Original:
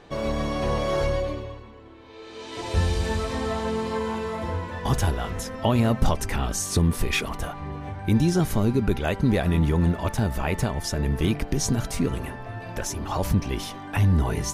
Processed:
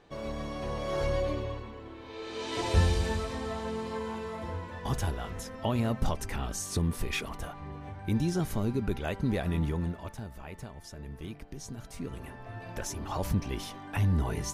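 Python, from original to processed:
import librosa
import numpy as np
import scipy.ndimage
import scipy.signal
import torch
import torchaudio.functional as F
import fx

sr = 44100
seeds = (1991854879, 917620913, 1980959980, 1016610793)

y = fx.gain(x, sr, db=fx.line((0.75, -10.0), (1.57, 2.0), (2.54, 2.0), (3.39, -8.0), (9.64, -8.0), (10.3, -18.0), (11.73, -18.0), (12.56, -6.5)))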